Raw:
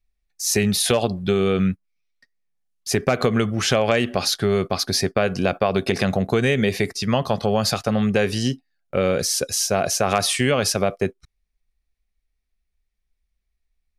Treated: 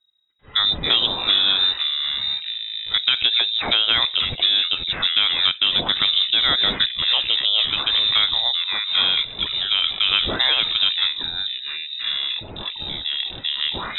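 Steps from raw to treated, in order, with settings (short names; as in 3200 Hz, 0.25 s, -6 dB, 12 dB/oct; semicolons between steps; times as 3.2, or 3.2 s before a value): echoes that change speed 92 ms, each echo -5 st, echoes 3, each echo -6 dB; inverted band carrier 3800 Hz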